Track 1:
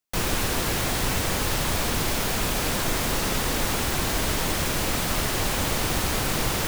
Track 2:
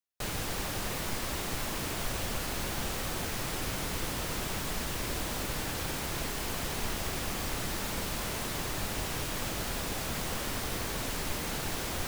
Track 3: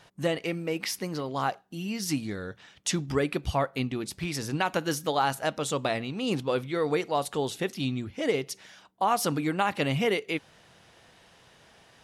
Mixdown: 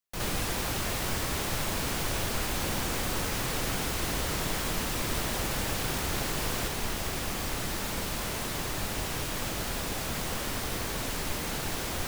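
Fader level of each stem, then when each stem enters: -10.0 dB, +1.5 dB, mute; 0.00 s, 0.00 s, mute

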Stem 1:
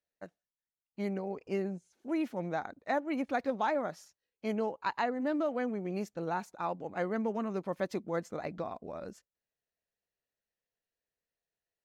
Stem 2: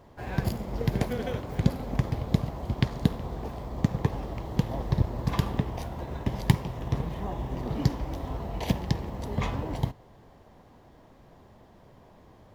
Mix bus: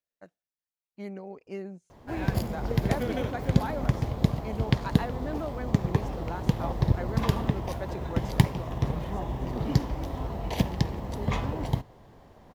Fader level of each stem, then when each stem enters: -4.0 dB, +1.0 dB; 0.00 s, 1.90 s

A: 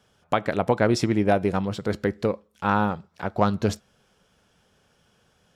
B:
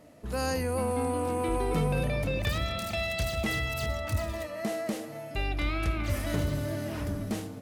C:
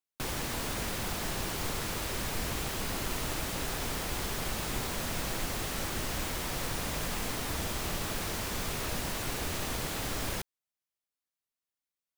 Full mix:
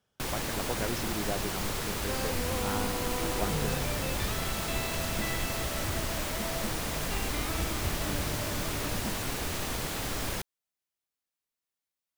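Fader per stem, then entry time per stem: -14.5 dB, -6.5 dB, +1.0 dB; 0.00 s, 1.75 s, 0.00 s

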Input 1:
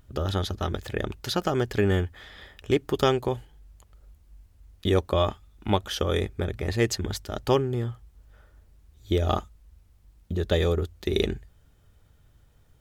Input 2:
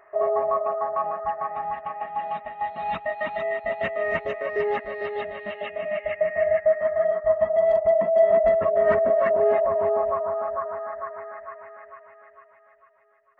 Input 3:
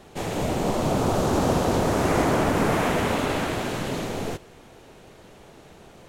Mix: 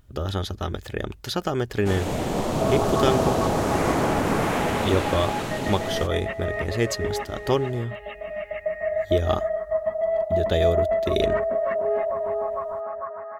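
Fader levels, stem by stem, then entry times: 0.0 dB, -4.0 dB, -1.0 dB; 0.00 s, 2.45 s, 1.70 s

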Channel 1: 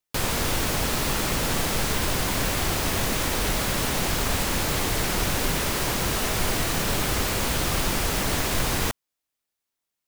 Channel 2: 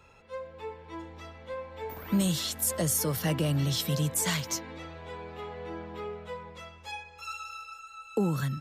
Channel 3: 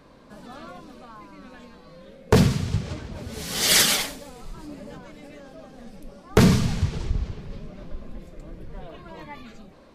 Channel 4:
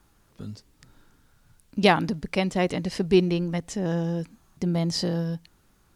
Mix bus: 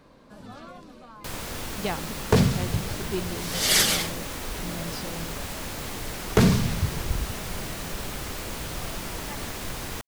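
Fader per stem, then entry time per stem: -9.5 dB, mute, -2.5 dB, -12.0 dB; 1.10 s, mute, 0.00 s, 0.00 s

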